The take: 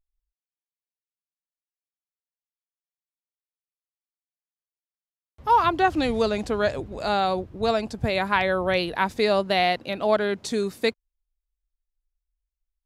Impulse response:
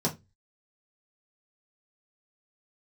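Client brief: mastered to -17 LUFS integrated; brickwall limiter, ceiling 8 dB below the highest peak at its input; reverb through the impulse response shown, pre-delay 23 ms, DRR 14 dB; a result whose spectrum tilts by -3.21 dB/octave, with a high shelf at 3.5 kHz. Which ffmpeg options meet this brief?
-filter_complex "[0:a]highshelf=f=3500:g=3.5,alimiter=limit=0.188:level=0:latency=1,asplit=2[s0][s1];[1:a]atrim=start_sample=2205,adelay=23[s2];[s1][s2]afir=irnorm=-1:irlink=0,volume=0.0794[s3];[s0][s3]amix=inputs=2:normalize=0,volume=2.51"

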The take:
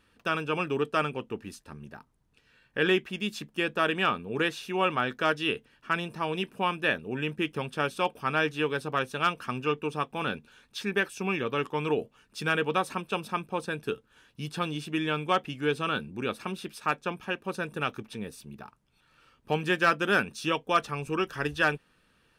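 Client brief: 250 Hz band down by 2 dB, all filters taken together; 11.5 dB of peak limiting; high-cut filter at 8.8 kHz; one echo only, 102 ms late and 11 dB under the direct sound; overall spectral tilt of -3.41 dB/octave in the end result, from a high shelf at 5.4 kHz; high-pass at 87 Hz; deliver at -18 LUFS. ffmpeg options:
-af "highpass=87,lowpass=8800,equalizer=f=250:t=o:g=-3,highshelf=f=5400:g=-3.5,alimiter=limit=0.0668:level=0:latency=1,aecho=1:1:102:0.282,volume=7.94"

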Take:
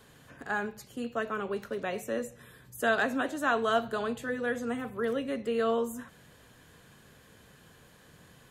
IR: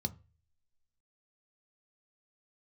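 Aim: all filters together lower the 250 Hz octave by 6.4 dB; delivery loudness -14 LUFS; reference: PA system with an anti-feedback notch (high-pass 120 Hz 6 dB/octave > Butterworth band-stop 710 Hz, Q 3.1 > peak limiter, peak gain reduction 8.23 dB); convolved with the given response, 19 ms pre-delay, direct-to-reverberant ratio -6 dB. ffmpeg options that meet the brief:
-filter_complex "[0:a]equalizer=f=250:t=o:g=-6,asplit=2[s0][s1];[1:a]atrim=start_sample=2205,adelay=19[s2];[s1][s2]afir=irnorm=-1:irlink=0,volume=1.88[s3];[s0][s3]amix=inputs=2:normalize=0,highpass=f=120:p=1,asuperstop=centerf=710:order=8:qfactor=3.1,volume=5.01,alimiter=limit=0.596:level=0:latency=1"

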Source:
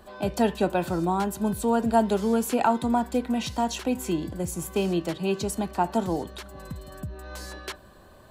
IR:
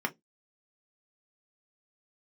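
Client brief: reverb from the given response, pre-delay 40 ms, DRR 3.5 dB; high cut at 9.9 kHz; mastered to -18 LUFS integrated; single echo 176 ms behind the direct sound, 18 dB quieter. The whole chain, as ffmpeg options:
-filter_complex "[0:a]lowpass=9900,aecho=1:1:176:0.126,asplit=2[s0][s1];[1:a]atrim=start_sample=2205,adelay=40[s2];[s1][s2]afir=irnorm=-1:irlink=0,volume=0.299[s3];[s0][s3]amix=inputs=2:normalize=0,volume=1.88"

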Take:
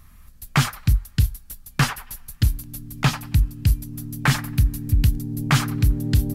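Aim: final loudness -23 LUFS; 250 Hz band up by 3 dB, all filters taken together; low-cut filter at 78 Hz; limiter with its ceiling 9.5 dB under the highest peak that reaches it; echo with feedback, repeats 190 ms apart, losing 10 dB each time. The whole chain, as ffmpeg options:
-af "highpass=78,equalizer=f=250:t=o:g=4.5,alimiter=limit=0.188:level=0:latency=1,aecho=1:1:190|380|570|760:0.316|0.101|0.0324|0.0104,volume=1.58"

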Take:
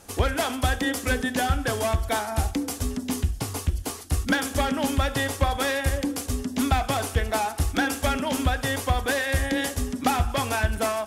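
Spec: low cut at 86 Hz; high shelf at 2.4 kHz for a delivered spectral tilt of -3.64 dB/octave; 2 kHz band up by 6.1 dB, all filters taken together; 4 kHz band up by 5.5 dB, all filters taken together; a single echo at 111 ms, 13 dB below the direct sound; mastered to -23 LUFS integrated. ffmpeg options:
-af "highpass=86,equalizer=f=2000:t=o:g=8,highshelf=f=2400:g=-4.5,equalizer=f=4000:t=o:g=8,aecho=1:1:111:0.224,volume=1.06"

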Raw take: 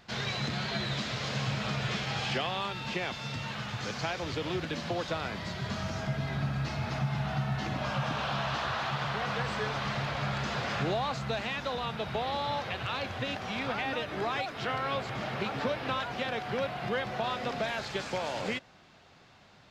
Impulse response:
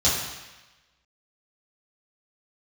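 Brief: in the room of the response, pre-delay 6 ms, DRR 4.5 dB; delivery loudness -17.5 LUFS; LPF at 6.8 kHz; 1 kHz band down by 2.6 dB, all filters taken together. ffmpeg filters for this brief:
-filter_complex "[0:a]lowpass=6800,equalizer=f=1000:t=o:g=-3.5,asplit=2[s0][s1];[1:a]atrim=start_sample=2205,adelay=6[s2];[s1][s2]afir=irnorm=-1:irlink=0,volume=0.106[s3];[s0][s3]amix=inputs=2:normalize=0,volume=5.31"

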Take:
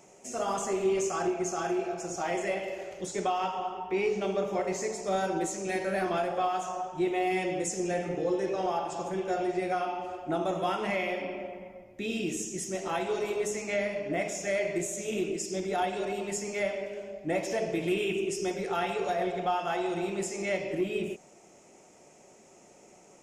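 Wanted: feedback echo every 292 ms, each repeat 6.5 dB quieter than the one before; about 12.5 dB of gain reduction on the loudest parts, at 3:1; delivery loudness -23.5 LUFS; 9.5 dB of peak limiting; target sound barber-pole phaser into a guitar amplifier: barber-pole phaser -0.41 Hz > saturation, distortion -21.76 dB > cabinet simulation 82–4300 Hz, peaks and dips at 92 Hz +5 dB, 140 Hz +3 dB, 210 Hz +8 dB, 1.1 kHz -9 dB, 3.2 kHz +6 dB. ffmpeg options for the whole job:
-filter_complex "[0:a]acompressor=threshold=0.00794:ratio=3,alimiter=level_in=5.01:limit=0.0631:level=0:latency=1,volume=0.2,aecho=1:1:292|584|876|1168|1460|1752:0.473|0.222|0.105|0.0491|0.0231|0.0109,asplit=2[s0][s1];[s1]afreqshift=-0.41[s2];[s0][s2]amix=inputs=2:normalize=1,asoftclip=threshold=0.0112,highpass=82,equalizer=f=92:t=q:w=4:g=5,equalizer=f=140:t=q:w=4:g=3,equalizer=f=210:t=q:w=4:g=8,equalizer=f=1100:t=q:w=4:g=-9,equalizer=f=3200:t=q:w=4:g=6,lowpass=f=4300:w=0.5412,lowpass=f=4300:w=1.3066,volume=17.8"

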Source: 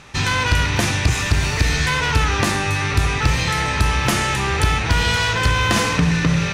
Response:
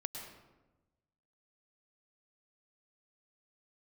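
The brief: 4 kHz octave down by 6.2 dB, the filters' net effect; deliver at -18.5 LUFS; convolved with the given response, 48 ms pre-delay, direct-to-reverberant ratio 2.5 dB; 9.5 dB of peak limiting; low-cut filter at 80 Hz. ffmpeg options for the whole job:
-filter_complex "[0:a]highpass=80,equalizer=f=4000:t=o:g=-8.5,alimiter=limit=0.211:level=0:latency=1,asplit=2[s0][s1];[1:a]atrim=start_sample=2205,adelay=48[s2];[s1][s2]afir=irnorm=-1:irlink=0,volume=0.794[s3];[s0][s3]amix=inputs=2:normalize=0,volume=1.26"

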